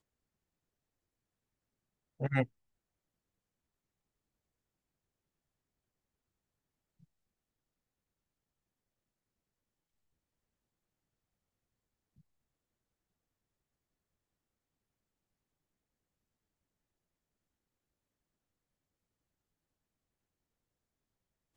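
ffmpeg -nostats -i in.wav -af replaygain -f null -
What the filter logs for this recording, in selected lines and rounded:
track_gain = +64.0 dB
track_peak = 0.136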